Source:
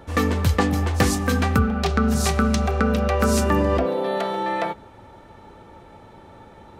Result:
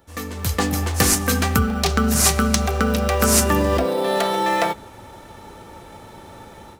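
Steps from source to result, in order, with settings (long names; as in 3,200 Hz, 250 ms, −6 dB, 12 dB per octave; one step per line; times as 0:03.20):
first-order pre-emphasis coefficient 0.8
automatic gain control gain up to 16.5 dB
in parallel at −10 dB: decimation without filtering 10×
on the sum: level −1 dB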